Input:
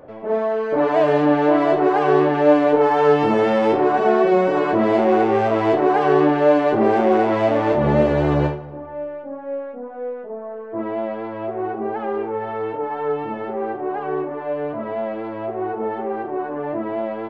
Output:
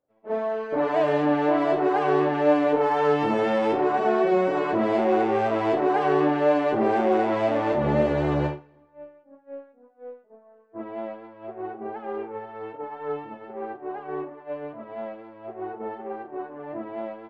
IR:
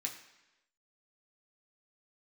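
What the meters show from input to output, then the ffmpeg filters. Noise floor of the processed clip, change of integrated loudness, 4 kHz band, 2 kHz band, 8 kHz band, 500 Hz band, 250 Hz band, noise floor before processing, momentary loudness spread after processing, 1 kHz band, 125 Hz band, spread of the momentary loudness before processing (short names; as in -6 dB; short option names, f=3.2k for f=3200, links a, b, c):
-57 dBFS, -4.5 dB, -4.5 dB, -5.0 dB, n/a, -6.0 dB, -6.0 dB, -33 dBFS, 17 LU, -5.5 dB, -6.5 dB, 14 LU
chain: -filter_complex "[0:a]agate=range=-33dB:threshold=-20dB:ratio=3:detection=peak,asplit=2[a][b];[1:a]atrim=start_sample=2205[c];[b][c]afir=irnorm=-1:irlink=0,volume=-11dB[d];[a][d]amix=inputs=2:normalize=0,volume=-6dB"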